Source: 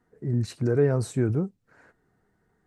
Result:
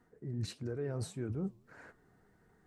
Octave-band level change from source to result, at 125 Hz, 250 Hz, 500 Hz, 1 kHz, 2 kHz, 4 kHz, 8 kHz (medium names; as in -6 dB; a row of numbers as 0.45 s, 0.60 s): -13.0 dB, -12.5 dB, -15.5 dB, -12.5 dB, -12.0 dB, -4.0 dB, -8.0 dB